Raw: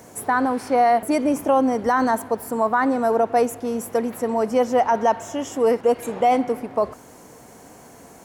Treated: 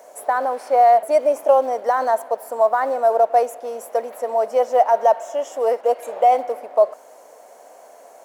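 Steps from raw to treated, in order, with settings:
in parallel at −11 dB: floating-point word with a short mantissa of 2 bits
on the sum: high-pass with resonance 600 Hz, resonance Q 4.9
level −7 dB

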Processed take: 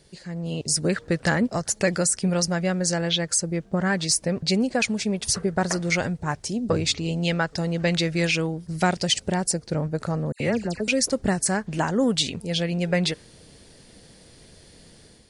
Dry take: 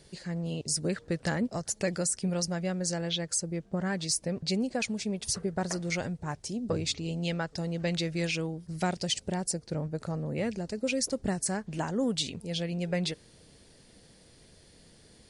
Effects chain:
automatic gain control gain up to 7 dB
dynamic equaliser 1,500 Hz, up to +4 dB, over −40 dBFS, Q 0.88
0:10.32–0:10.88: all-pass dispersion lows, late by 81 ms, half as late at 2,400 Hz

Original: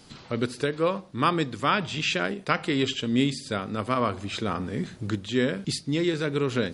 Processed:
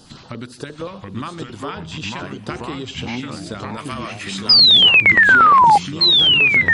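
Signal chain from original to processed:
0:03.77–0:04.51: spectral tilt +3.5 dB per octave
downward compressor, threshold −32 dBFS, peak gain reduction 14.5 dB
0:04.49–0:05.78: sound drawn into the spectrogram fall 790–5,100 Hz −15 dBFS
auto-filter notch square 8.6 Hz 450–2,200 Hz
delay with pitch and tempo change per echo 667 ms, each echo −3 semitones, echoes 3
level +6 dB

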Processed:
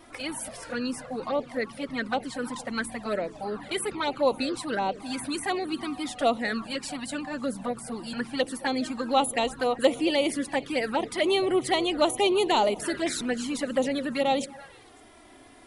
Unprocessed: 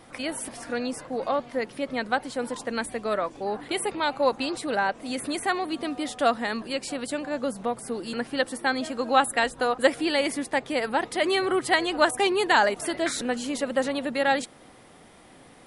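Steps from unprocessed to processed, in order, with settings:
in parallel at −10.5 dB: soft clipping −22.5 dBFS, distortion −9 dB
on the sum: echo through a band-pass that steps 111 ms, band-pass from 180 Hz, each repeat 1.4 octaves, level −11.5 dB
tape wow and flutter 21 cents
flanger swept by the level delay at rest 3.3 ms, full sweep at −19 dBFS

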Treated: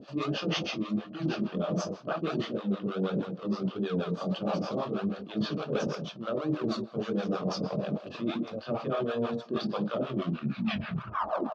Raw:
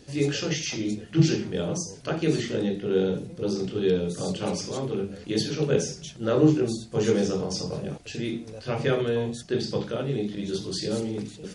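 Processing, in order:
turntable brake at the end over 1.51 s
in parallel at −10.5 dB: sample-and-hold swept by an LFO 40×, swing 100% 1.5 Hz
on the sum: loudspeaker in its box 190–4,100 Hz, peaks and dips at 200 Hz +8 dB, 420 Hz −4 dB, 640 Hz +9 dB, 1,200 Hz +10 dB, 2,000 Hz −9 dB
far-end echo of a speakerphone 190 ms, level −14 dB
two-band tremolo in antiphase 6.3 Hz, depth 100%, crossover 570 Hz
reversed playback
downward compressor 10 to 1, threshold −34 dBFS, peak gain reduction 17 dB
reversed playback
level +7 dB

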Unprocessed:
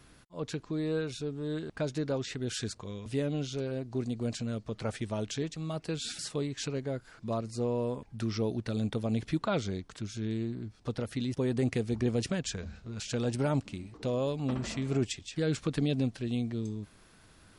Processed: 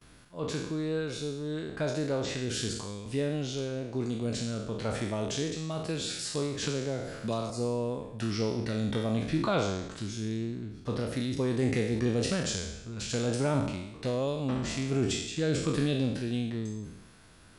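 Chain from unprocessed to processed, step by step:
peak hold with a decay on every bin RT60 0.87 s
noise gate with hold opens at −48 dBFS
0:06.62–0:07.50: multiband upward and downward compressor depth 70%

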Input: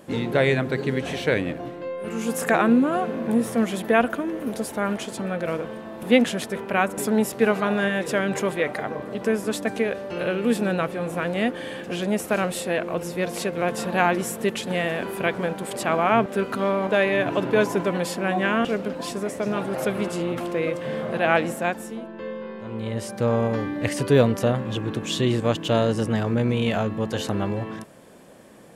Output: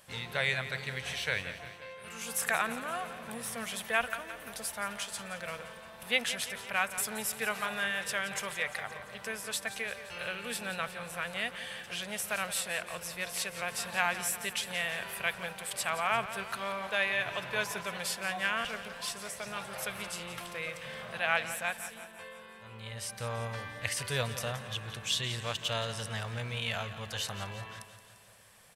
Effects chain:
guitar amp tone stack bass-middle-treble 10-0-10
notch filter 6,900 Hz, Q 16
repeating echo 173 ms, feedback 59%, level −13 dB

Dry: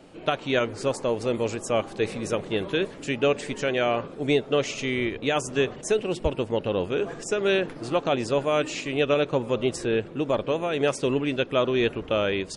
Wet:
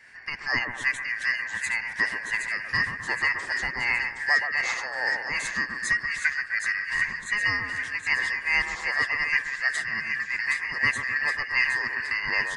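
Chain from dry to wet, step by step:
band-splitting scrambler in four parts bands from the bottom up 2143
shaped tremolo triangle 2.6 Hz, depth 70%
echo with a time of its own for lows and highs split 1,700 Hz, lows 128 ms, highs 769 ms, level −5 dB

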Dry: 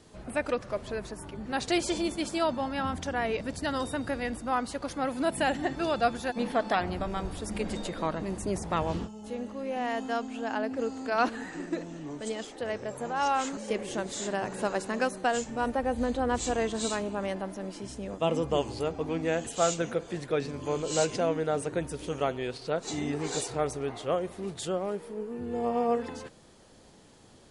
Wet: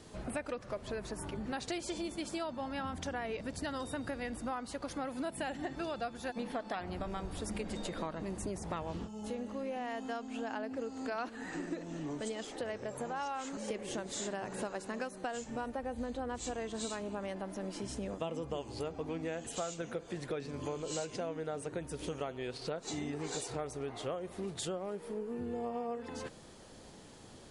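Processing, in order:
downward compressor 6 to 1, threshold −38 dBFS, peak gain reduction 17 dB
level +2 dB

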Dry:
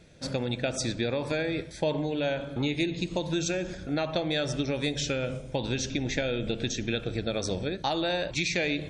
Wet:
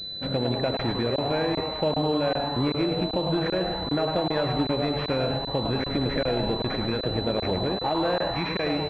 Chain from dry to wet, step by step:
in parallel at −2 dB: brickwall limiter −25 dBFS, peak gain reduction 10.5 dB
on the sum: echo with shifted repeats 104 ms, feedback 61%, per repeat +150 Hz, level −7 dB
regular buffer underruns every 0.39 s, samples 1,024, zero, from 0:00.77
switching amplifier with a slow clock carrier 4,000 Hz

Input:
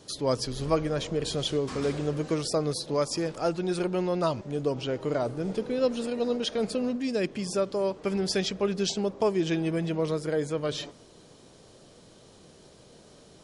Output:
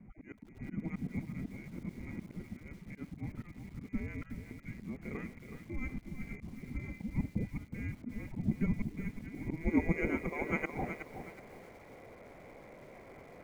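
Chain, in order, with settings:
high-pass filter 160 Hz 12 dB per octave
voice inversion scrambler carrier 2,600 Hz
decimation without filtering 10×
low-pass filter sweep 220 Hz → 540 Hz, 0:08.88–0:10.56
volume swells 240 ms
feedback echo at a low word length 370 ms, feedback 35%, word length 12 bits, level −8.5 dB
level +16.5 dB

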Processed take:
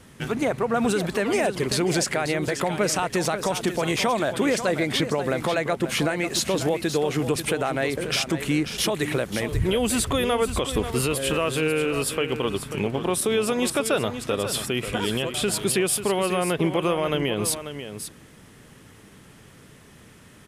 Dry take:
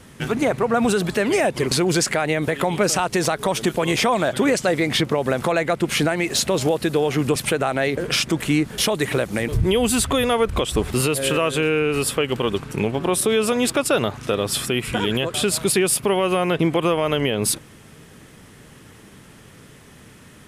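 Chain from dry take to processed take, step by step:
single-tap delay 540 ms −10 dB
level −4 dB

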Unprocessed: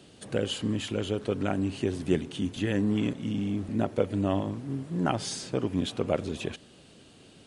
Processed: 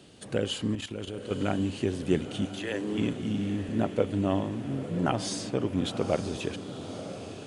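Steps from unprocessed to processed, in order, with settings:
0:00.75–0:01.31: output level in coarse steps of 12 dB
0:02.44–0:02.97: high-pass filter 600 Hz → 250 Hz 24 dB per octave
feedback delay with all-pass diffusion 955 ms, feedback 61%, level −11 dB

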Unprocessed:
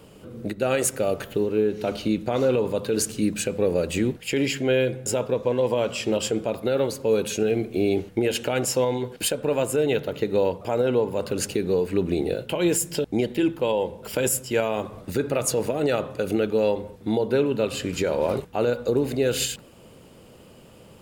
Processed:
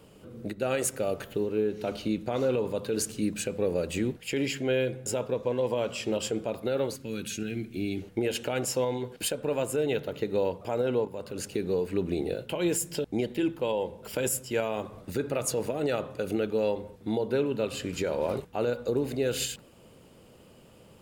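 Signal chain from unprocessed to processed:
0:06.96–0:08.02: flat-topped bell 660 Hz −14 dB
0:11.05–0:11.54: output level in coarse steps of 10 dB
level −5.5 dB

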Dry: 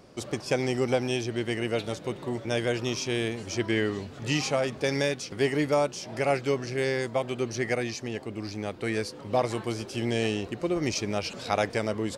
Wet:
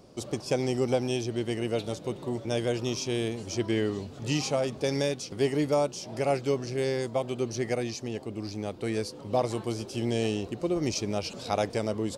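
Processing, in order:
parametric band 1,800 Hz −8.5 dB 1.2 octaves

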